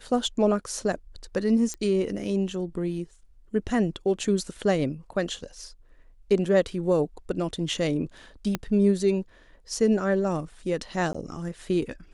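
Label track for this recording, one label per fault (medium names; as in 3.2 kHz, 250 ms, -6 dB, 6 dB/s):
1.740000	1.740000	pop -19 dBFS
8.550000	8.550000	pop -12 dBFS
11.130000	11.140000	dropout 15 ms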